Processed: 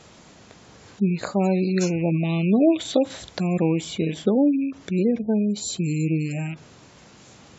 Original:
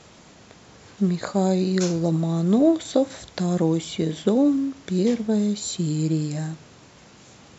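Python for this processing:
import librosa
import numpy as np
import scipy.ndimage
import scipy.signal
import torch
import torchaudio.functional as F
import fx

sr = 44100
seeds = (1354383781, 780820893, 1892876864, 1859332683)

y = fx.rattle_buzz(x, sr, strikes_db=-33.0, level_db=-27.0)
y = fx.dynamic_eq(y, sr, hz=3200.0, q=1.7, threshold_db=-49.0, ratio=4.0, max_db=7, at=(2.23, 3.29))
y = fx.spec_gate(y, sr, threshold_db=-30, keep='strong')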